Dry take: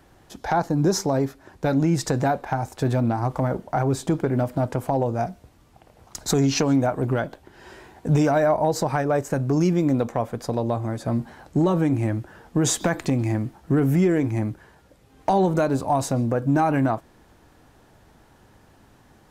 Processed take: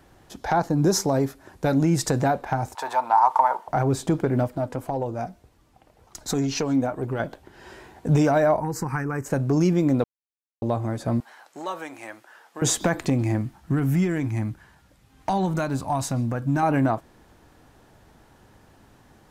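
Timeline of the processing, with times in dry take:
0:00.83–0:02.21: parametric band 11,000 Hz +5.5 dB 1.2 octaves
0:02.75–0:03.68: high-pass with resonance 920 Hz, resonance Q 9.4
0:04.47–0:07.20: flanger 1.9 Hz, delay 1.9 ms, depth 2.2 ms, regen +61%
0:08.60–0:09.26: phaser with its sweep stopped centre 1,500 Hz, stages 4
0:10.04–0:10.62: silence
0:11.20–0:12.62: high-pass filter 890 Hz
0:13.41–0:16.63: parametric band 460 Hz −10 dB 1.2 octaves

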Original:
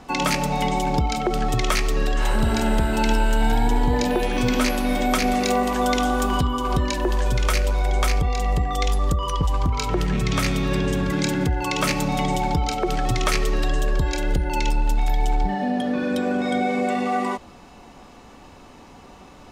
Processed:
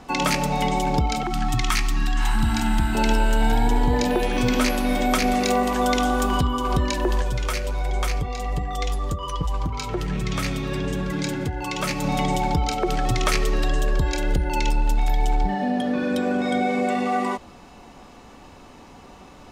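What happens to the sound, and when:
0:01.23–0:02.95: Chebyshev band-stop filter 330–750 Hz, order 3
0:07.22–0:12.04: flanger 1.3 Hz, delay 5.1 ms, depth 3.7 ms, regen −46%

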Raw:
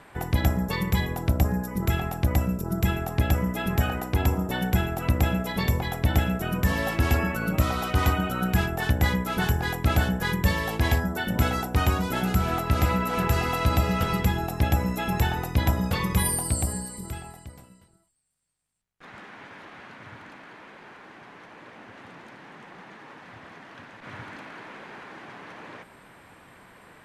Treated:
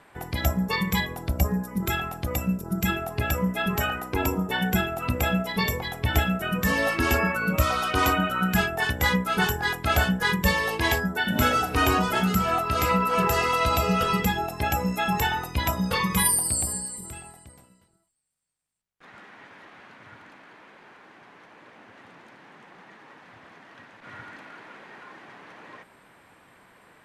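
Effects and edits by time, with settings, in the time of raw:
0:11.19–0:11.86: thrown reverb, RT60 2.2 s, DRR 4 dB
whole clip: noise reduction from a noise print of the clip's start 9 dB; low-shelf EQ 160 Hz −5.5 dB; level +5.5 dB

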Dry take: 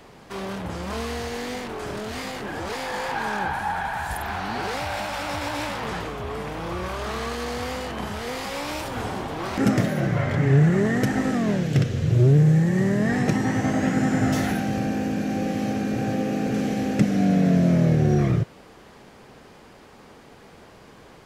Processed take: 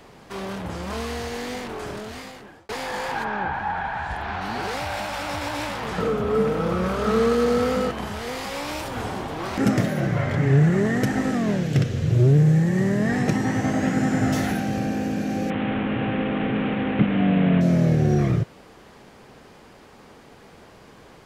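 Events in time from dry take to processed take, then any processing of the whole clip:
0:01.79–0:02.69: fade out
0:03.23–0:04.40: low-pass filter 2,400 Hz → 4,300 Hz
0:05.98–0:07.91: hollow resonant body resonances 210/450/1,300 Hz, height 15 dB
0:15.50–0:17.61: linear delta modulator 16 kbit/s, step −23 dBFS

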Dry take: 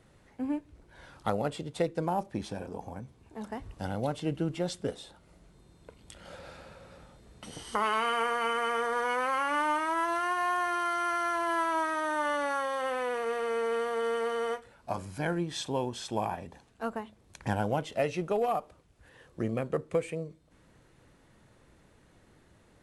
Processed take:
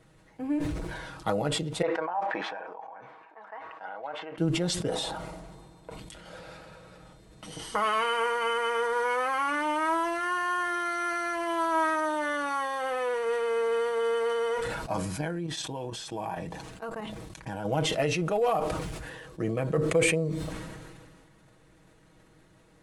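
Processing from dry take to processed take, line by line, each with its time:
0:01.82–0:04.38: flat-topped band-pass 1,200 Hz, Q 0.94
0:04.89–0:05.99: parametric band 800 Hz +9.5 dB 1.2 octaves
0:15.21–0:17.65: output level in coarse steps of 12 dB
whole clip: comb filter 6.3 ms, depth 58%; level that may fall only so fast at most 29 dB per second

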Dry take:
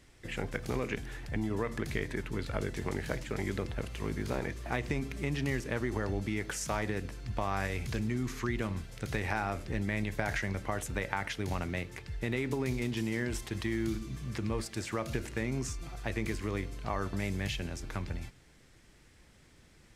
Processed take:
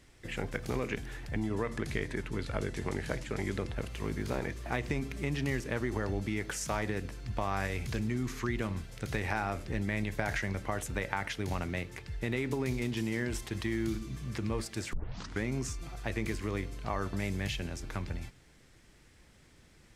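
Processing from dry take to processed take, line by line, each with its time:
0:01.40–0:03.76: Butterworth low-pass 12,000 Hz 48 dB per octave
0:14.93: tape start 0.50 s

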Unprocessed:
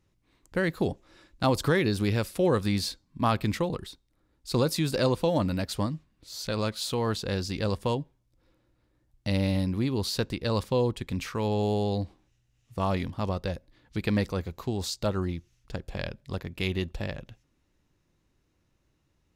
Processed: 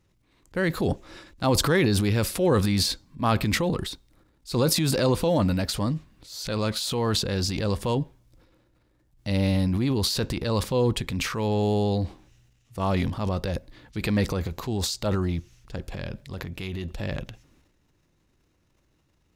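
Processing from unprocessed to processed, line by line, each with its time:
0:15.79–0:16.99: downward compressor, threshold −30 dBFS
whole clip: transient designer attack −4 dB, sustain +9 dB; level +3 dB

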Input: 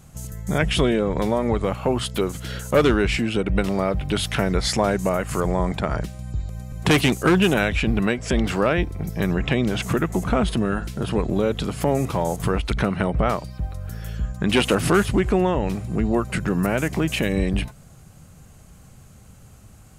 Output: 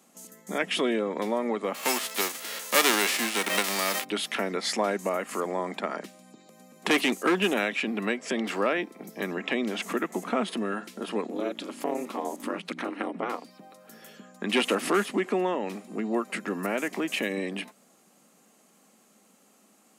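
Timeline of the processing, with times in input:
0:01.74–0:04.03: spectral envelope flattened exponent 0.3
0:11.27–0:13.46: ring modulation 120 Hz
whole clip: Butterworth high-pass 210 Hz 48 dB per octave; notch filter 1,500 Hz, Q 11; dynamic equaliser 1,800 Hz, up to +4 dB, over −40 dBFS, Q 1.1; level −6 dB

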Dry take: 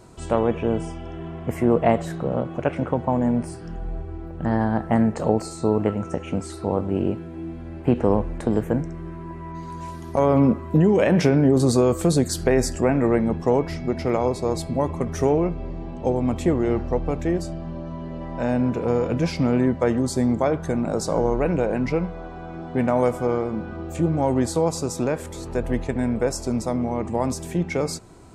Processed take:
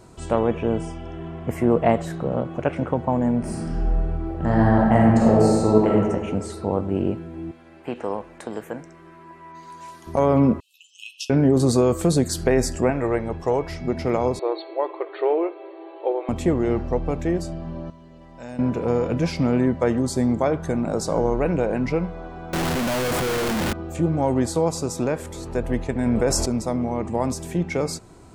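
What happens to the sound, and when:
0:03.39–0:05.90: thrown reverb, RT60 1.6 s, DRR −4 dB
0:07.51–0:10.07: high-pass filter 1,000 Hz 6 dB per octave
0:10.60–0:11.30: linear-phase brick-wall high-pass 2,500 Hz
0:12.90–0:13.81: parametric band 210 Hz −11 dB 1 octave
0:14.39–0:16.29: linear-phase brick-wall band-pass 310–4,500 Hz
0:17.90–0:18.59: first-order pre-emphasis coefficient 0.8
0:22.53–0:23.73: sign of each sample alone
0:26.06–0:26.46: envelope flattener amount 70%

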